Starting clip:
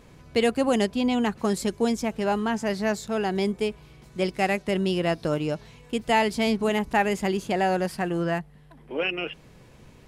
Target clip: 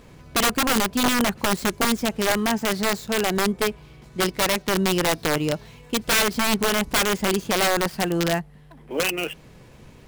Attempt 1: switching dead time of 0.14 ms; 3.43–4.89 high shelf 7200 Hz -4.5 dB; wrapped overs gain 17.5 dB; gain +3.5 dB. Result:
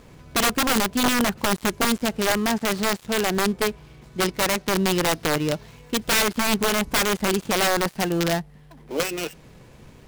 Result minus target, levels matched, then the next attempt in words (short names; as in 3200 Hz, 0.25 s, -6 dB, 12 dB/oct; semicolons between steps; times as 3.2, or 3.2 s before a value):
switching dead time: distortion +10 dB
switching dead time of 0.054 ms; 3.43–4.89 high shelf 7200 Hz -4.5 dB; wrapped overs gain 17.5 dB; gain +3.5 dB